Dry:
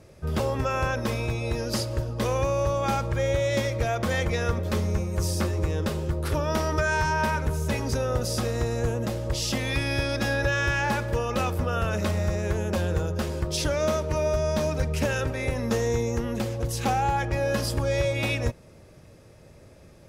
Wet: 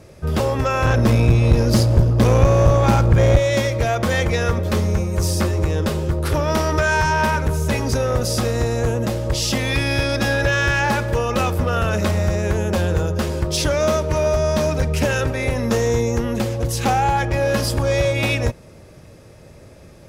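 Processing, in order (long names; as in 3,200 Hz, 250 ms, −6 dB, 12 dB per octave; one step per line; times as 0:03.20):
0:00.85–0:03.38: low-shelf EQ 290 Hz +12 dB
asymmetric clip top −21 dBFS
level +7 dB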